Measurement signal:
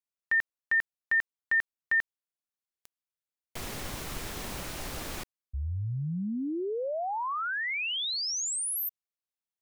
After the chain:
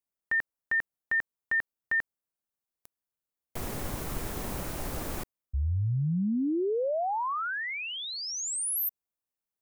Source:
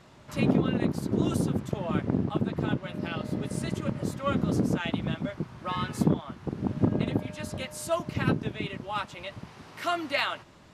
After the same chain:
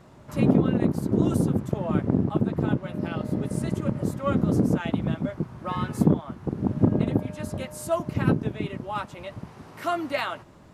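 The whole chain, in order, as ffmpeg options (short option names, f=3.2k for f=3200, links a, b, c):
-af "equalizer=f=3.6k:t=o:w=2.6:g=-9.5,volume=4.5dB"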